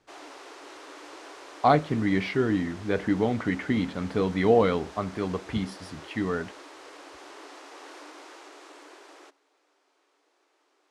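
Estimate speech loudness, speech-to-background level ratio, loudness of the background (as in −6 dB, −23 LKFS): −26.5 LKFS, 19.0 dB, −45.5 LKFS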